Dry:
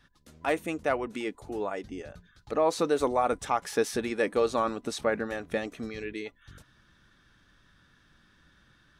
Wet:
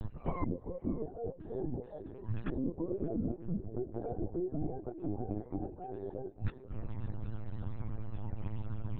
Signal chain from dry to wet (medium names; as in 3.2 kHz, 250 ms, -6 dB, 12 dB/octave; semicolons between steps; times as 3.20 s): spectrum inverted on a logarithmic axis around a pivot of 410 Hz; low-pass that closes with the level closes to 1.2 kHz, closed at -25.5 dBFS; peak limiter -25 dBFS, peak gain reduction 10 dB; inverted gate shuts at -44 dBFS, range -27 dB; tilt shelf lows +10 dB, about 1.3 kHz; band-passed feedback delay 584 ms, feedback 49%, band-pass 430 Hz, level -12 dB; LPC vocoder at 8 kHz pitch kept; trim +15.5 dB